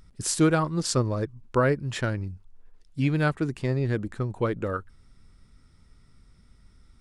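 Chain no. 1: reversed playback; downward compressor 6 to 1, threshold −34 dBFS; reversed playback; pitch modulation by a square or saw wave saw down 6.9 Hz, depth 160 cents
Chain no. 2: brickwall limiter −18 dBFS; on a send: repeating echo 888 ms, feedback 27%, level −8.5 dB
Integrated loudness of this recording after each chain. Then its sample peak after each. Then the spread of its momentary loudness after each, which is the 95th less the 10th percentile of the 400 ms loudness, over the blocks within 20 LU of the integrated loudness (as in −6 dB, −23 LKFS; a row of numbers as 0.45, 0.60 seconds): −38.0, −29.5 LKFS; −23.5, −15.5 dBFS; 5, 13 LU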